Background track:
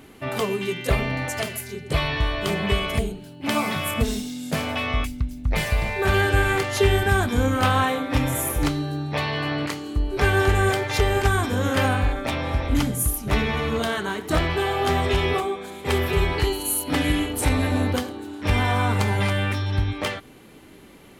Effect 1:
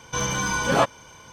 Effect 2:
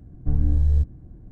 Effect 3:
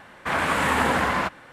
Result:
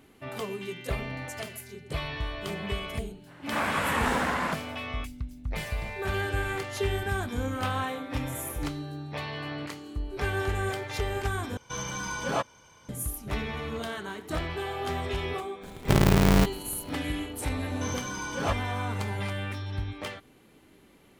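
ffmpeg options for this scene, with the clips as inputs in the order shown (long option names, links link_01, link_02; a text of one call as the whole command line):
ffmpeg -i bed.wav -i cue0.wav -i cue1.wav -i cue2.wav -filter_complex "[1:a]asplit=2[link_01][link_02];[0:a]volume=-10dB[link_03];[2:a]aeval=exprs='val(0)*sgn(sin(2*PI*120*n/s))':channel_layout=same[link_04];[link_03]asplit=2[link_05][link_06];[link_05]atrim=end=11.574[link_07];[link_01]atrim=end=1.32,asetpts=PTS-STARTPTS,volume=-9dB[link_08];[link_06]atrim=start=12.886[link_09];[3:a]atrim=end=1.52,asetpts=PTS-STARTPTS,volume=-5.5dB,afade=type=in:duration=0.05,afade=type=out:start_time=1.47:duration=0.05,adelay=3260[link_10];[link_04]atrim=end=1.31,asetpts=PTS-STARTPTS,volume=-2dB,afade=type=in:duration=0.004:curve=hsin,afade=type=out:start_time=1.306:duration=0.004:curve=hsin,adelay=15620[link_11];[link_02]atrim=end=1.32,asetpts=PTS-STARTPTS,volume=-10.5dB,afade=type=in:duration=0.004:curve=hsin,afade=type=out:start_time=1.316:duration=0.004:curve=hsin,adelay=17680[link_12];[link_07][link_08]acrossfade=duration=0.004:curve1=hsin:curve2=hsin[link_13];[link_13][link_09]acrossfade=duration=0.004:curve1=hsin:curve2=hsin[link_14];[link_14][link_10][link_11][link_12]amix=inputs=4:normalize=0" out.wav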